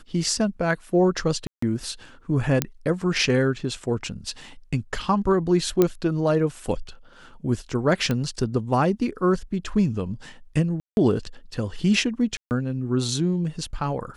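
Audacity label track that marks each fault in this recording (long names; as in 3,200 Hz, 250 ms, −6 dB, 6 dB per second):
1.470000	1.620000	drop-out 154 ms
2.620000	2.620000	click −4 dBFS
5.820000	5.820000	click −6 dBFS
8.110000	8.110000	click −12 dBFS
10.800000	10.970000	drop-out 171 ms
12.370000	12.510000	drop-out 139 ms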